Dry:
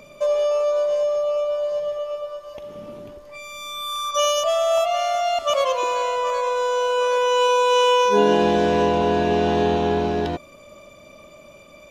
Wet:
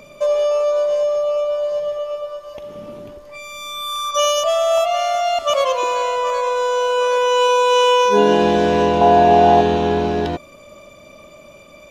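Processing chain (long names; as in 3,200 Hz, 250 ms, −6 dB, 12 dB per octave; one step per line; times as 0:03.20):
0:09.01–0:09.61: parametric band 760 Hz +13 dB 0.5 octaves
level +3 dB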